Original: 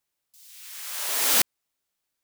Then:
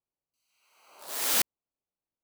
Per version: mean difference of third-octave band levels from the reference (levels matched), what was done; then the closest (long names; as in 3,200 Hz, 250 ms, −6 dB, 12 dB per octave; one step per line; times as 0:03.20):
6.5 dB: adaptive Wiener filter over 25 samples
level −4 dB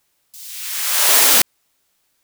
3.0 dB: boost into a limiter +16.5 dB
level −1 dB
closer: second